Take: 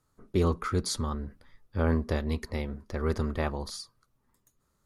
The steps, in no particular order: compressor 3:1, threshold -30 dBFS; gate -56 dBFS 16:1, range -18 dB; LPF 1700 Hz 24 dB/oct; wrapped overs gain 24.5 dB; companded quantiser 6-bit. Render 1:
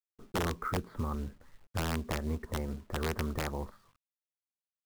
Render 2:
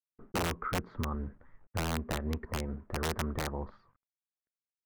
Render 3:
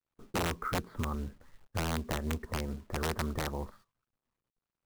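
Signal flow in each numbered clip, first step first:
gate > LPF > compressor > companded quantiser > wrapped overs; gate > companded quantiser > compressor > LPF > wrapped overs; LPF > compressor > wrapped overs > companded quantiser > gate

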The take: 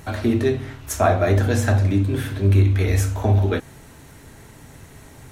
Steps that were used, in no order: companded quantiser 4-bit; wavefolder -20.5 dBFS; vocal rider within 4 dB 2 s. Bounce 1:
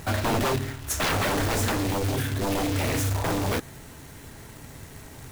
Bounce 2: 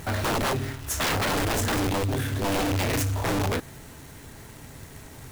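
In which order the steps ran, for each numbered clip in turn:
wavefolder > vocal rider > companded quantiser; vocal rider > companded quantiser > wavefolder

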